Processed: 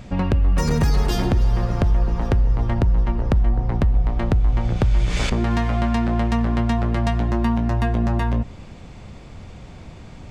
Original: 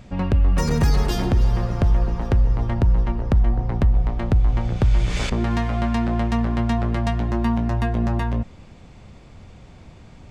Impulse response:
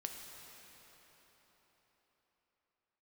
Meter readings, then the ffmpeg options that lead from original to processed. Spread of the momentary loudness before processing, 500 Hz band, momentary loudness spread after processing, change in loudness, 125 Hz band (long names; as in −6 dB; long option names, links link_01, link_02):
3 LU, +1.0 dB, 11 LU, +0.5 dB, +0.5 dB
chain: -filter_complex "[0:a]acompressor=threshold=-24dB:ratio=2,asplit=2[link_01][link_02];[1:a]atrim=start_sample=2205,atrim=end_sample=6174[link_03];[link_02][link_03]afir=irnorm=-1:irlink=0,volume=-8dB[link_04];[link_01][link_04]amix=inputs=2:normalize=0,volume=3dB"